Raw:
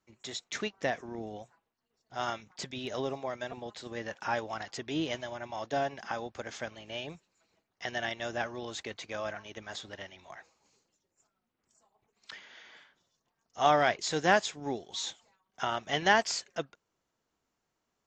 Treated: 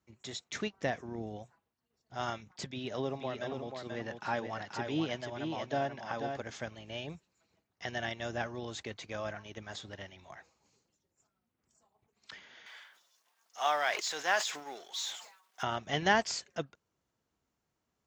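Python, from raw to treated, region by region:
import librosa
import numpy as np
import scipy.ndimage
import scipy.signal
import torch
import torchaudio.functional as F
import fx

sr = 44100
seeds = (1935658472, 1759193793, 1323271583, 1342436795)

y = fx.chain(x, sr, fx.bandpass_edges(low_hz=110.0, high_hz=5800.0),
    fx.echo_single(ms=484, db=-5.5), at=(2.66, 6.42))
y = fx.chain(y, sr, fx.law_mismatch(coded='mu'),
    fx.highpass(hz=860.0, slope=12),
    fx.sustainer(db_per_s=90.0), at=(12.66, 15.63))
y = scipy.signal.sosfilt(scipy.signal.butter(2, 60.0, 'highpass', fs=sr, output='sos'), y)
y = fx.low_shelf(y, sr, hz=160.0, db=11.5)
y = y * 10.0 ** (-3.0 / 20.0)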